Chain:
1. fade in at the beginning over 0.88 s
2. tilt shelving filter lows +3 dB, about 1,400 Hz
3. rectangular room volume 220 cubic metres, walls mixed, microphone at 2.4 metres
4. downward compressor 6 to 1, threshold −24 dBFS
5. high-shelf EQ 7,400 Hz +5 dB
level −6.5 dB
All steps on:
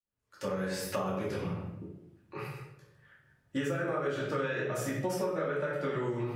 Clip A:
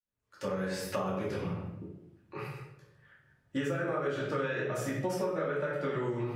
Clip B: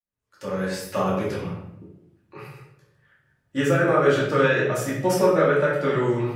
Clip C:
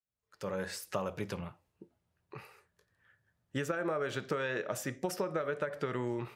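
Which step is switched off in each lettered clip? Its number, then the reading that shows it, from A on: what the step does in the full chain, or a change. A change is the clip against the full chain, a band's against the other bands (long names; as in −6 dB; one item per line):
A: 5, 8 kHz band −2.5 dB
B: 4, average gain reduction 8.0 dB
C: 3, change in momentary loudness spread −1 LU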